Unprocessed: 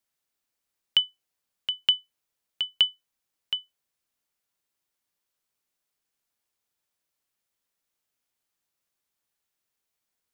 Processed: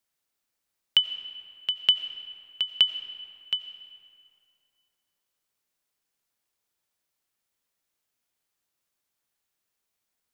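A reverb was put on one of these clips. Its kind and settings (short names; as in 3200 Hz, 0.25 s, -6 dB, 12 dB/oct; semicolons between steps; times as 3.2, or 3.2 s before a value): digital reverb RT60 2.5 s, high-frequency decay 0.65×, pre-delay 50 ms, DRR 11 dB; gain +1 dB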